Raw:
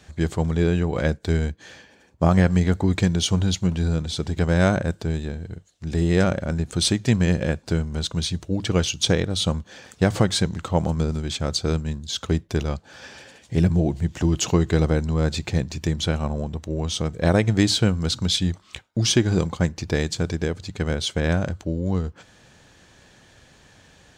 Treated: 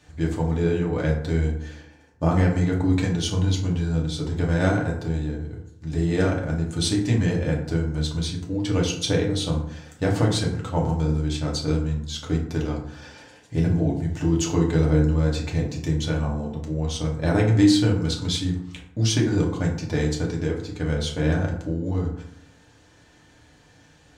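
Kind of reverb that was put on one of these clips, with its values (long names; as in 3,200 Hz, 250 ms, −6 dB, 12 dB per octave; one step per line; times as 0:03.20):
feedback delay network reverb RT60 0.71 s, low-frequency decay 1.2×, high-frequency decay 0.5×, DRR −2.5 dB
level −7 dB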